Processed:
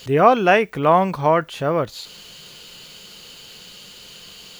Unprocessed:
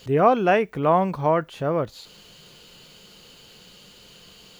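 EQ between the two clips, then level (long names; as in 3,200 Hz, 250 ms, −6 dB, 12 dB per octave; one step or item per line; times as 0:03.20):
tilt shelving filter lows −3.5 dB, about 1,200 Hz
+5.5 dB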